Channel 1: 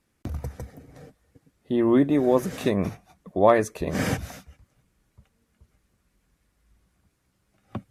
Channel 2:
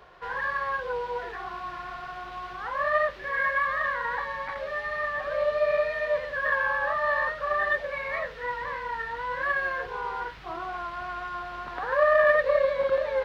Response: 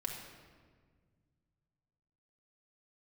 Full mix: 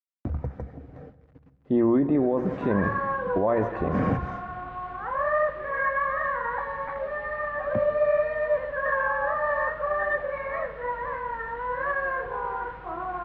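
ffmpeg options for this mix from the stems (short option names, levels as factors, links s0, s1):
-filter_complex "[0:a]acrusher=bits=9:mix=0:aa=0.000001,deesser=0.85,volume=1.12,asplit=3[s0][s1][s2];[s1]volume=0.224[s3];[s2]volume=0.119[s4];[1:a]adelay=2400,volume=0.891,asplit=2[s5][s6];[s6]volume=0.668[s7];[2:a]atrim=start_sample=2205[s8];[s3][s7]amix=inputs=2:normalize=0[s9];[s9][s8]afir=irnorm=-1:irlink=0[s10];[s4]aecho=0:1:160:1[s11];[s0][s5][s10][s11]amix=inputs=4:normalize=0,lowpass=1400,alimiter=limit=0.188:level=0:latency=1:release=22"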